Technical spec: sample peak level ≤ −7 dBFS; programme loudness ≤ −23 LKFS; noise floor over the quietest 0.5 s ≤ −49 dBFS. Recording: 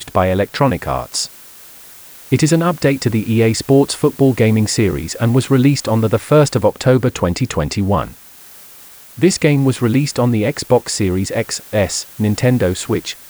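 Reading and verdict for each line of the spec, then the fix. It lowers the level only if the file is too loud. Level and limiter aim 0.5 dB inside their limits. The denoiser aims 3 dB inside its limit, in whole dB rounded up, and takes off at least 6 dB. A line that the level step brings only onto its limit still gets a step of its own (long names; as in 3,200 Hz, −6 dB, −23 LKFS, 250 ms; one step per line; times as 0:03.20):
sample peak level −1.5 dBFS: out of spec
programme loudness −15.5 LKFS: out of spec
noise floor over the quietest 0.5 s −40 dBFS: out of spec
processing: broadband denoise 6 dB, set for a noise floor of −40 dBFS
level −8 dB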